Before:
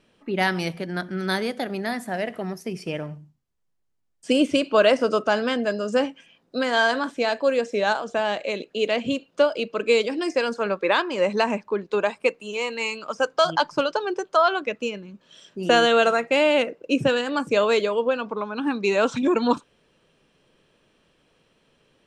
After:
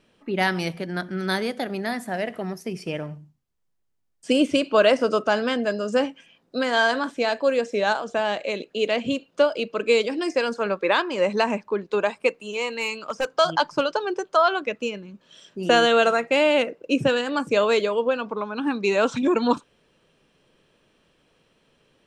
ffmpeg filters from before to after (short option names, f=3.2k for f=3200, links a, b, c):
-filter_complex "[0:a]asettb=1/sr,asplit=3[a][b][c];[a]atrim=end=12.704[d];[b]atrim=start=12.7:end=13.28,asetpts=PTS-STARTPTS,afade=t=in:d=0.004:c=qsin,afade=t=out:st=0.576:d=0.004:c=qsin,asoftclip=type=hard:threshold=-18.5dB[e];[c]atrim=start=13.276[f];[d][e]acrossfade=d=0.004:c1=hsin:c2=qsin[g];[g][f]acrossfade=d=0.004:c1=qsin:c2=hsin"